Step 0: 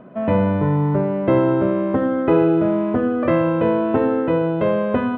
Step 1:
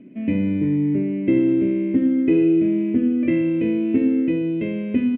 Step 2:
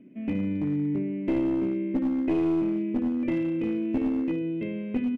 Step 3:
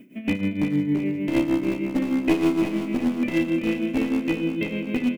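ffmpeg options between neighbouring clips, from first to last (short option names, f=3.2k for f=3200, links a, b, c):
-af "firequalizer=gain_entry='entry(140,0);entry(280,14);entry(480,-5);entry(780,-18);entry(1300,-19);entry(2200,12);entry(3900,-3);entry(6800,-10)':delay=0.05:min_phase=1,volume=-8dB"
-af "aeval=exprs='clip(val(0),-1,0.158)':c=same,volume=-7dB"
-af "tremolo=f=6.5:d=0.74,crystalizer=i=8:c=0,aecho=1:1:354|708|1062|1416|1770|2124|2478:0.398|0.219|0.12|0.0662|0.0364|0.02|0.011,volume=5.5dB"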